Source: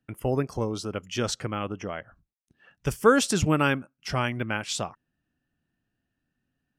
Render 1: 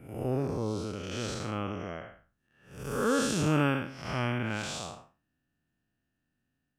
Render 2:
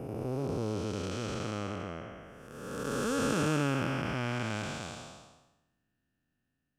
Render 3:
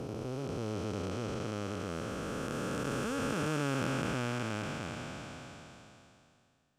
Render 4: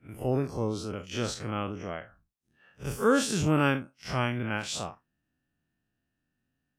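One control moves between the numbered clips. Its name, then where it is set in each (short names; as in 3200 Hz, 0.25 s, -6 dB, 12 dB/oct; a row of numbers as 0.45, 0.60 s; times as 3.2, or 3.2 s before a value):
time blur, width: 232, 665, 1720, 89 ms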